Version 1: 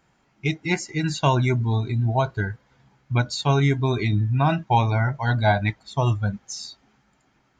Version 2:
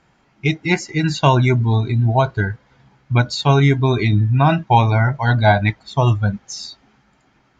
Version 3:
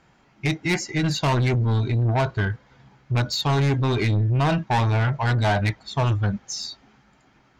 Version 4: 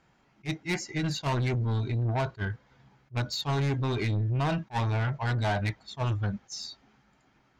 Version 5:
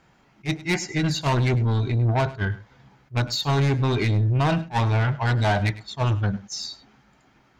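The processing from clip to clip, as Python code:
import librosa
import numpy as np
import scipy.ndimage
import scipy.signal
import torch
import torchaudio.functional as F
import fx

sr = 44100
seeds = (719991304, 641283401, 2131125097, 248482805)

y1 = scipy.signal.sosfilt(scipy.signal.butter(2, 6100.0, 'lowpass', fs=sr, output='sos'), x)
y1 = F.gain(torch.from_numpy(y1), 6.0).numpy()
y2 = 10.0 ** (-17.5 / 20.0) * np.tanh(y1 / 10.0 ** (-17.5 / 20.0))
y3 = fx.attack_slew(y2, sr, db_per_s=430.0)
y3 = F.gain(torch.from_numpy(y3), -7.0).numpy()
y4 = y3 + 10.0 ** (-17.5 / 20.0) * np.pad(y3, (int(102 * sr / 1000.0), 0))[:len(y3)]
y4 = F.gain(torch.from_numpy(y4), 6.5).numpy()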